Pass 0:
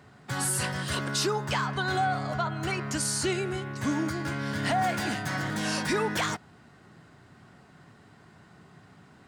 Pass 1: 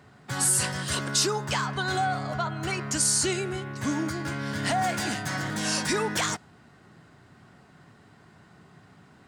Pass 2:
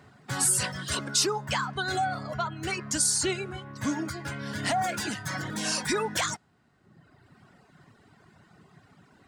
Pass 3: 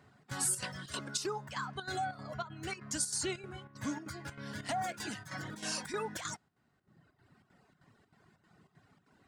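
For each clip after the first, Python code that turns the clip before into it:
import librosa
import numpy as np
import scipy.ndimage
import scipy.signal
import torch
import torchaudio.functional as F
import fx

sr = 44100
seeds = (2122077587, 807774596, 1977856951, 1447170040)

y1 = fx.dynamic_eq(x, sr, hz=7400.0, q=0.83, threshold_db=-46.0, ratio=4.0, max_db=8)
y2 = fx.dereverb_blind(y1, sr, rt60_s=1.3)
y3 = fx.chopper(y2, sr, hz=3.2, depth_pct=65, duty_pct=75)
y3 = F.gain(torch.from_numpy(y3), -8.0).numpy()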